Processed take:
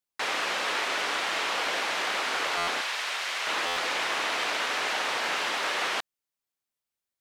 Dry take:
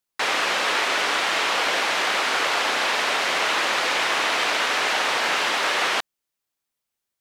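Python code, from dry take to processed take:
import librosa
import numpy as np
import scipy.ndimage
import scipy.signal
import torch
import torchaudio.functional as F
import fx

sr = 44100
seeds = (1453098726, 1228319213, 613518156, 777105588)

y = fx.highpass(x, sr, hz=1400.0, slope=6, at=(2.81, 3.47))
y = fx.buffer_glitch(y, sr, at_s=(2.57, 3.66), block=512, repeats=8)
y = F.gain(torch.from_numpy(y), -6.5).numpy()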